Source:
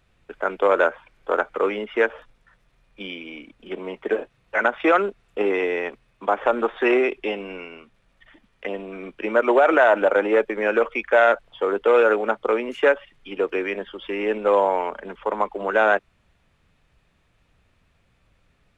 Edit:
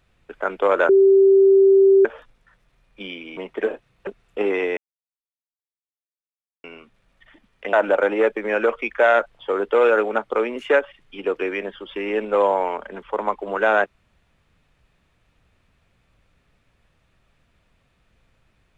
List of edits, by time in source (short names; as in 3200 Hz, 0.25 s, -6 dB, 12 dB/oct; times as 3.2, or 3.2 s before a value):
0.89–2.05 bleep 389 Hz -9.5 dBFS
3.37–3.85 cut
4.55–5.07 cut
5.77–7.64 mute
8.73–9.86 cut